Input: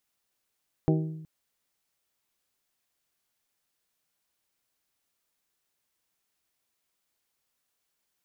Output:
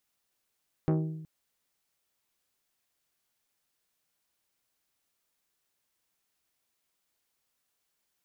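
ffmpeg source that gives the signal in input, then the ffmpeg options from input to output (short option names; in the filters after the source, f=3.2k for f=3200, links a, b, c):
-f lavfi -i "aevalsrc='0.1*pow(10,-3*t/0.99)*sin(2*PI*158*t)+0.0708*pow(10,-3*t/0.609)*sin(2*PI*316*t)+0.0501*pow(10,-3*t/0.536)*sin(2*PI*379.2*t)+0.0355*pow(10,-3*t/0.459)*sin(2*PI*474*t)+0.0251*pow(10,-3*t/0.375)*sin(2*PI*632*t)+0.0178*pow(10,-3*t/0.321)*sin(2*PI*790*t)':d=0.37:s=44100"
-af "asoftclip=type=tanh:threshold=-20.5dB"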